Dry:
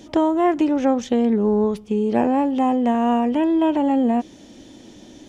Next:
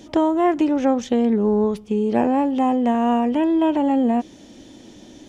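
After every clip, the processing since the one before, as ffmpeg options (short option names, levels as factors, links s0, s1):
-af anull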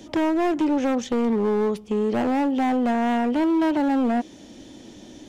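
-filter_complex "[0:a]acrossover=split=190|2000[s0][s1][s2];[s0]acompressor=threshold=0.01:ratio=6[s3];[s3][s1][s2]amix=inputs=3:normalize=0,volume=7.94,asoftclip=hard,volume=0.126"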